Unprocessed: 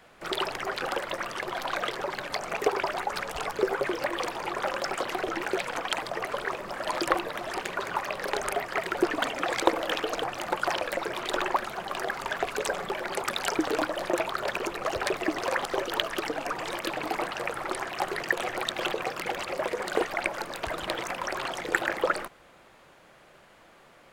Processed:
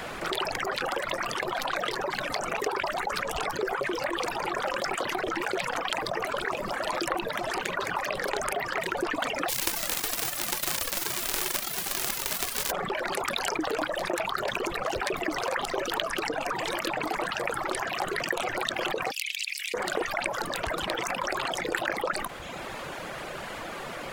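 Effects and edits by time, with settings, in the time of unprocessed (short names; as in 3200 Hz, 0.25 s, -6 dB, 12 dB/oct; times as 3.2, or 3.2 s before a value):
9.48–12.7 spectral whitening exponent 0.1
19.11–19.74 elliptic high-pass 2400 Hz, stop band 60 dB
whole clip: reverb removal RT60 0.65 s; fast leveller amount 70%; gain -7.5 dB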